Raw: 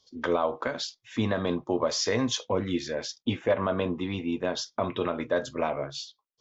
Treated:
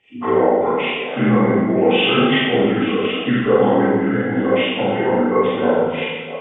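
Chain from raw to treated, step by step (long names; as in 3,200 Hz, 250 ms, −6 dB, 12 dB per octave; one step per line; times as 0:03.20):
partials spread apart or drawn together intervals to 79%
echo through a band-pass that steps 326 ms, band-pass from 230 Hz, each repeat 1.4 octaves, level −8 dB
four-comb reverb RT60 1.2 s, combs from 29 ms, DRR −6.5 dB
level +6.5 dB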